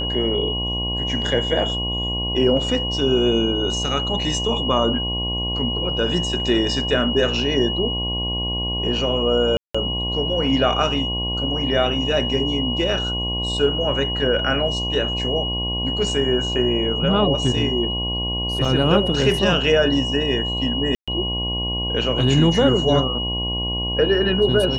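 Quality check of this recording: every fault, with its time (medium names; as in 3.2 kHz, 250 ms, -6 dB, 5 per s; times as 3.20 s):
buzz 60 Hz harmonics 18 -27 dBFS
whine 2.9 kHz -24 dBFS
9.57–9.74 s: dropout 175 ms
18.65 s: dropout 3.6 ms
20.95–21.08 s: dropout 126 ms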